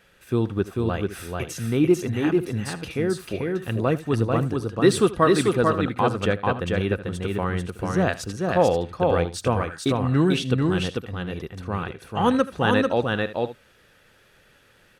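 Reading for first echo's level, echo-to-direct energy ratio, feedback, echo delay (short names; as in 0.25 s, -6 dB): -18.0 dB, -2.5 dB, no steady repeat, 79 ms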